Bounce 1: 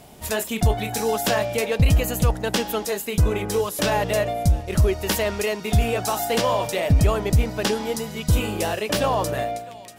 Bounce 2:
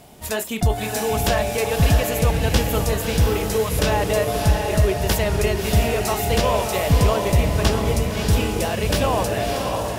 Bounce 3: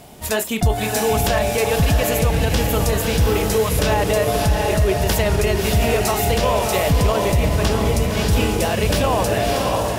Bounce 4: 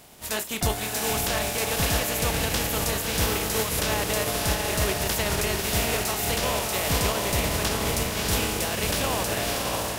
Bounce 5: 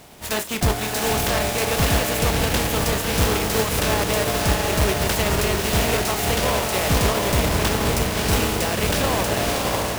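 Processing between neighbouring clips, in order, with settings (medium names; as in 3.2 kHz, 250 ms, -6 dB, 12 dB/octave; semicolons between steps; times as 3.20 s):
echo that smears into a reverb 618 ms, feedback 44%, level -3 dB
peak limiter -12.5 dBFS, peak gain reduction 7 dB; trim +4 dB
spectral contrast reduction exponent 0.58; trim -8 dB
square wave that keeps the level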